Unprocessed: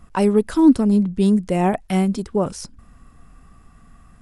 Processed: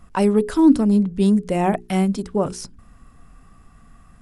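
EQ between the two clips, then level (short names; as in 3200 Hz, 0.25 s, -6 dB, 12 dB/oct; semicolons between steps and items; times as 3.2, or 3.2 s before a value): notches 60/120/180/240/300/360/420 Hz; 0.0 dB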